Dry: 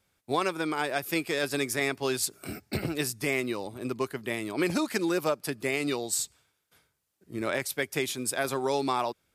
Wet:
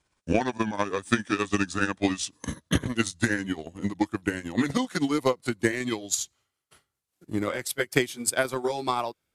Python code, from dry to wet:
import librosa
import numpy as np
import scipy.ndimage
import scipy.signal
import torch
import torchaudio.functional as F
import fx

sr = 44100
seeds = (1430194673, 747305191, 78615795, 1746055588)

y = fx.pitch_glide(x, sr, semitones=-7.0, runs='ending unshifted')
y = fx.transient(y, sr, attack_db=10, sustain_db=-6)